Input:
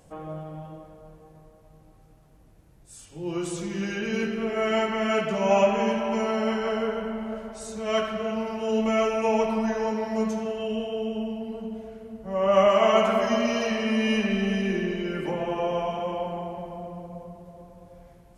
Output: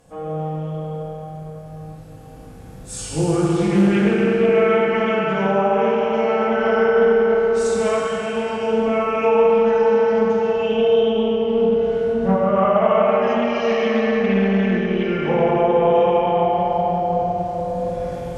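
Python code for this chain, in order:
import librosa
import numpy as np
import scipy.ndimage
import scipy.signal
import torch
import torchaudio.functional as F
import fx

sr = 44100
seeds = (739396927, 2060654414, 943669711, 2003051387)

y = fx.recorder_agc(x, sr, target_db=-12.0, rise_db_per_s=5.0, max_gain_db=30)
y = fx.env_lowpass_down(y, sr, base_hz=1500.0, full_db=-16.5)
y = fx.rev_fdn(y, sr, rt60_s=3.4, lf_ratio=1.0, hf_ratio=0.8, size_ms=12.0, drr_db=-5.0)
y = fx.doppler_dist(y, sr, depth_ms=0.21)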